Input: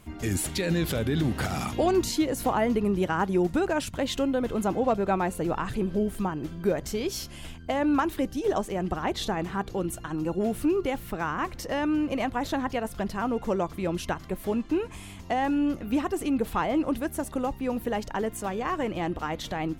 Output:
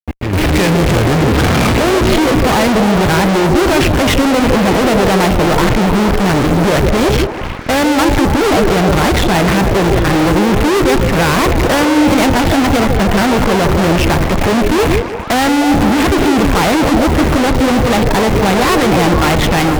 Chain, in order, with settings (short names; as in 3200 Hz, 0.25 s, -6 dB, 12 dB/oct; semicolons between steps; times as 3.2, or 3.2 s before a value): ladder low-pass 2700 Hz, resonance 45%; low shelf 380 Hz +11 dB; in parallel at 0 dB: level quantiser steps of 18 dB; on the sum: limiter -22 dBFS, peak gain reduction 7.5 dB; AGC gain up to 6 dB; bit-crush 10-bit; gate with hold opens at -21 dBFS; fuzz box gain 52 dB, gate -52 dBFS; on a send: delay with a stepping band-pass 0.156 s, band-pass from 410 Hz, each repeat 0.7 oct, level -1.5 dB; on the sum: gain +2 dB